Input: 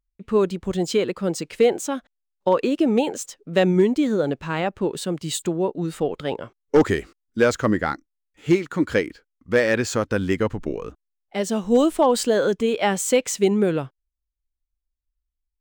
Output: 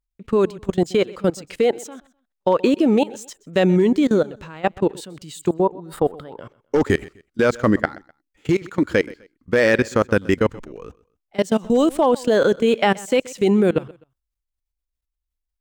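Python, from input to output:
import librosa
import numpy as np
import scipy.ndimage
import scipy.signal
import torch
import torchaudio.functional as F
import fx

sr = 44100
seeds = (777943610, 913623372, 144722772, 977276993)

y = fx.graphic_eq_15(x, sr, hz=(1000, 2500, 6300), db=(6, -11, -12), at=(5.49, 6.39))
y = fx.level_steps(y, sr, step_db=22)
y = fx.echo_feedback(y, sr, ms=127, feedback_pct=30, wet_db=-21.5)
y = y * 10.0 ** (7.0 / 20.0)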